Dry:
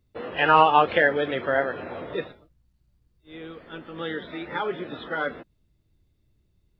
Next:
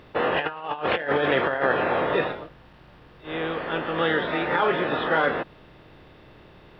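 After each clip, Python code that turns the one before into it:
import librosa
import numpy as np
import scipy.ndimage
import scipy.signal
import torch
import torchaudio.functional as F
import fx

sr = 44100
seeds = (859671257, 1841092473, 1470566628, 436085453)

y = fx.bin_compress(x, sr, power=0.6)
y = fx.over_compress(y, sr, threshold_db=-22.0, ratio=-0.5)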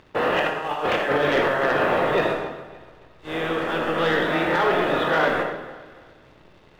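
y = fx.leveller(x, sr, passes=2)
y = fx.echo_feedback(y, sr, ms=284, feedback_pct=38, wet_db=-17.5)
y = fx.rev_freeverb(y, sr, rt60_s=0.85, hf_ratio=0.55, predelay_ms=20, drr_db=3.0)
y = y * 10.0 ** (-5.5 / 20.0)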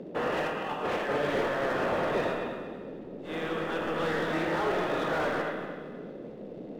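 y = fx.dmg_noise_band(x, sr, seeds[0], low_hz=160.0, high_hz=550.0, level_db=-34.0)
y = fx.echo_feedback(y, sr, ms=233, feedback_pct=31, wet_db=-10)
y = fx.slew_limit(y, sr, full_power_hz=120.0)
y = y * 10.0 ** (-8.0 / 20.0)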